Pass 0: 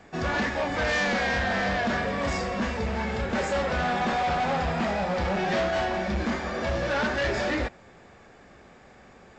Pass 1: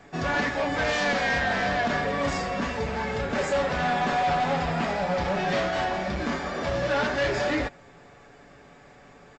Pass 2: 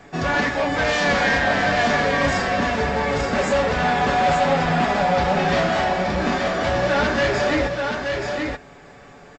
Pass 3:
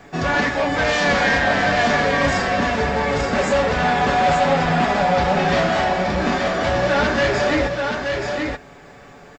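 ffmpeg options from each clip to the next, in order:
-af "aecho=1:1:7:0.46"
-af "aecho=1:1:879:0.596,volume=5dB"
-af "acrusher=bits=11:mix=0:aa=0.000001,volume=1.5dB"

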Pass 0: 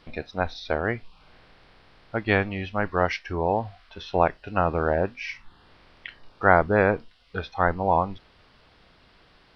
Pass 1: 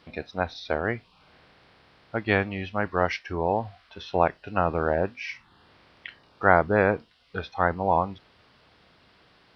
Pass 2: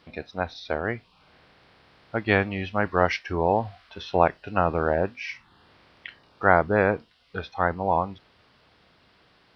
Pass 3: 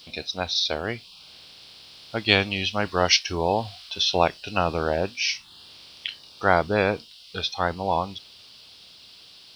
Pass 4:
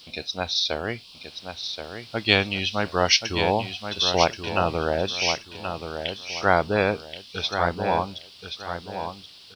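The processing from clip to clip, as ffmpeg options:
-af "highpass=74,volume=-1dB"
-af "dynaudnorm=f=260:g=17:m=11.5dB,volume=-1dB"
-af "aexciter=amount=10.8:drive=4.1:freq=2.8k,volume=-1dB"
-af "aecho=1:1:1078|2156|3234:0.398|0.115|0.0335"

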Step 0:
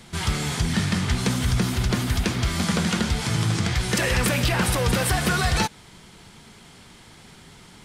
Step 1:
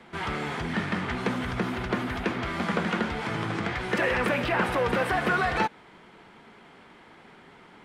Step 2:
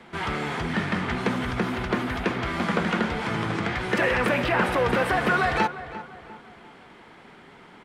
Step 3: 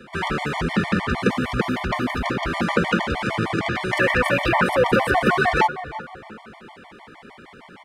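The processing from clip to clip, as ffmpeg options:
-filter_complex "[0:a]acrossover=split=230 2600:gain=0.158 1 0.0794[a][b][c];[a][b][c]amix=inputs=3:normalize=0,volume=1dB"
-filter_complex "[0:a]asplit=2[a][b];[b]adelay=348,lowpass=f=2.3k:p=1,volume=-13.5dB,asplit=2[c][d];[d]adelay=348,lowpass=f=2.3k:p=1,volume=0.44,asplit=2[e][f];[f]adelay=348,lowpass=f=2.3k:p=1,volume=0.44,asplit=2[g][h];[h]adelay=348,lowpass=f=2.3k:p=1,volume=0.44[i];[a][c][e][g][i]amix=inputs=5:normalize=0,volume=2.5dB"
-af "afftfilt=real='re*gt(sin(2*PI*6.5*pts/sr)*(1-2*mod(floor(b*sr/1024/590),2)),0)':imag='im*gt(sin(2*PI*6.5*pts/sr)*(1-2*mod(floor(b*sr/1024/590),2)),0)':win_size=1024:overlap=0.75,volume=7dB"

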